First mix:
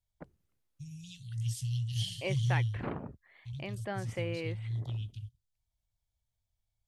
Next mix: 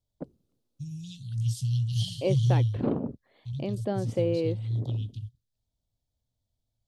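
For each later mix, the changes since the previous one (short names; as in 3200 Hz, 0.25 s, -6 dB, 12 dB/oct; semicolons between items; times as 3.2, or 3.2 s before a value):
master: add graphic EQ 125/250/500/2000/4000 Hz +4/+12/+9/-11/+7 dB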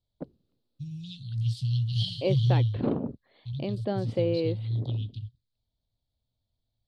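second voice: add LPF 9100 Hz 12 dB/oct; master: add resonant high shelf 5200 Hz -6.5 dB, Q 3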